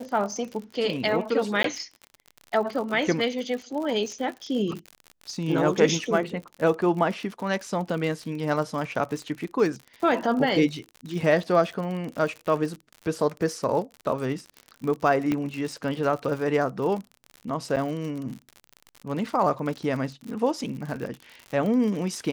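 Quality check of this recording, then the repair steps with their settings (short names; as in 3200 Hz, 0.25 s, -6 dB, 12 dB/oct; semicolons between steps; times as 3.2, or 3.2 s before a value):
crackle 59/s -32 dBFS
1.63–1.64 gap 13 ms
15.32 pop -14 dBFS
17.76–17.77 gap 7.8 ms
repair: de-click; interpolate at 1.63, 13 ms; interpolate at 17.76, 7.8 ms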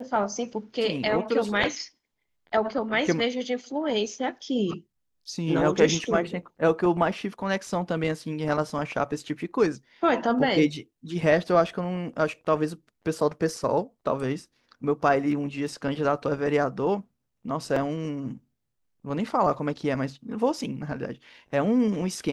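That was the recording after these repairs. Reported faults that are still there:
15.32 pop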